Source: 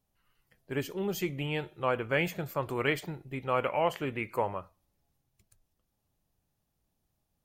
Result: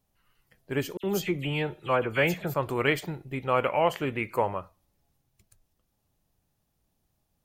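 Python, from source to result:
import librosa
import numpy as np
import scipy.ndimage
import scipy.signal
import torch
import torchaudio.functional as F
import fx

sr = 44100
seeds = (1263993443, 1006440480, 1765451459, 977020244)

y = fx.dispersion(x, sr, late='lows', ms=64.0, hz=2900.0, at=(0.97, 2.54))
y = y * 10.0 ** (4.0 / 20.0)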